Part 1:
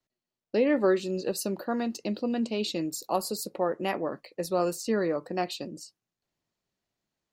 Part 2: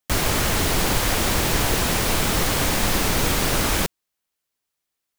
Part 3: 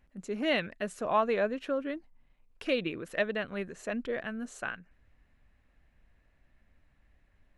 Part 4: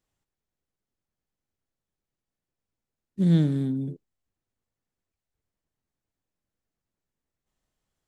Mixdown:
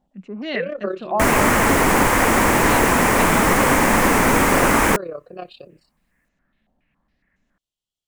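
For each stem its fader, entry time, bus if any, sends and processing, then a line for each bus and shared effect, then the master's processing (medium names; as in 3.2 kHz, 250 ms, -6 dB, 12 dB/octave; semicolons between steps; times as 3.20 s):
+2.5 dB, 0.00 s, no send, Bessel low-pass 2.8 kHz, order 2; static phaser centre 1.3 kHz, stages 8; AM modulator 33 Hz, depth 55%
-1.5 dB, 1.10 s, no send, graphic EQ 250/500/1000/2000/4000/8000 Hz +10/+5/+10/+10/-9/+5 dB
-8.0 dB, 0.00 s, no send, FFT filter 110 Hz 0 dB, 190 Hz +15 dB, 410 Hz +6 dB; step-sequenced low-pass 7.2 Hz 780–6600 Hz
-14.0 dB, 0.00 s, no send, resonant high shelf 2.4 kHz +8.5 dB, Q 3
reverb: none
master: none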